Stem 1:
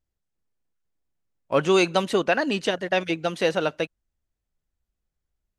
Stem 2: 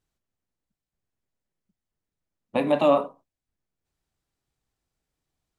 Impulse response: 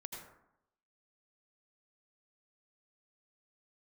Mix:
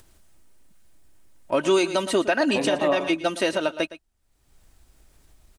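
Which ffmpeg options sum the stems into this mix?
-filter_complex "[0:a]equalizer=frequency=9200:width_type=o:width=0.51:gain=8.5,aecho=1:1:3.2:0.6,volume=1dB,asplit=2[link_01][link_02];[link_02]volume=-16dB[link_03];[1:a]volume=-1dB,asplit=2[link_04][link_05];[link_05]volume=-12.5dB[link_06];[link_03][link_06]amix=inputs=2:normalize=0,aecho=0:1:114:1[link_07];[link_01][link_04][link_07]amix=inputs=3:normalize=0,acompressor=mode=upward:threshold=-37dB:ratio=2.5,alimiter=limit=-11.5dB:level=0:latency=1:release=111"

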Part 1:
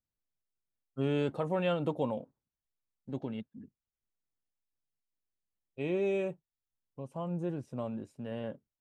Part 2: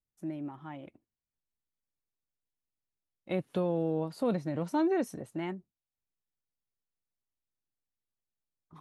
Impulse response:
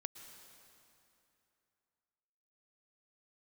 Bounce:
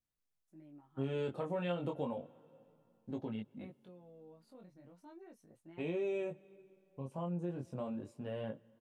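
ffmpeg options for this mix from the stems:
-filter_complex "[0:a]volume=1.5dB,asplit=3[link_01][link_02][link_03];[link_02]volume=-14.5dB[link_04];[1:a]alimiter=level_in=4dB:limit=-24dB:level=0:latency=1:release=227,volume=-4dB,adelay=300,volume=-9dB[link_05];[link_03]apad=whole_len=401611[link_06];[link_05][link_06]sidechaingate=range=-8dB:threshold=-59dB:ratio=16:detection=peak[link_07];[2:a]atrim=start_sample=2205[link_08];[link_04][link_08]afir=irnorm=-1:irlink=0[link_09];[link_01][link_07][link_09]amix=inputs=3:normalize=0,flanger=delay=18:depth=5.2:speed=0.34,acompressor=threshold=-38dB:ratio=2"

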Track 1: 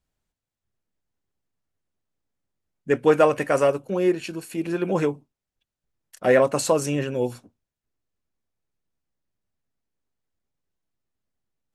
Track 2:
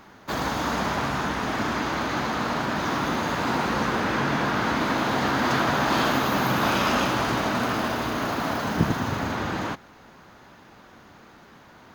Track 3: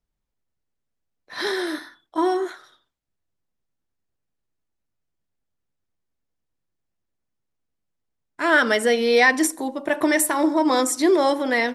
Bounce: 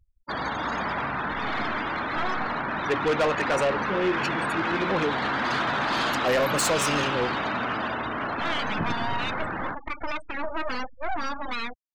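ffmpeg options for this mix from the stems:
ffmpeg -i stem1.wav -i stem2.wav -i stem3.wav -filter_complex "[0:a]acompressor=mode=upward:threshold=-33dB:ratio=2.5,volume=1.5dB[link_01];[1:a]volume=-1.5dB[link_02];[2:a]alimiter=limit=-11dB:level=0:latency=1:release=106,deesser=0.9,aeval=exprs='abs(val(0))':channel_layout=same,volume=-3.5dB[link_03];[link_01][link_02][link_03]amix=inputs=3:normalize=0,afftfilt=real='re*gte(hypot(re,im),0.0282)':imag='im*gte(hypot(re,im),0.0282)':win_size=1024:overlap=0.75,tiltshelf=frequency=810:gain=-4.5,asoftclip=type=tanh:threshold=-19dB" out.wav

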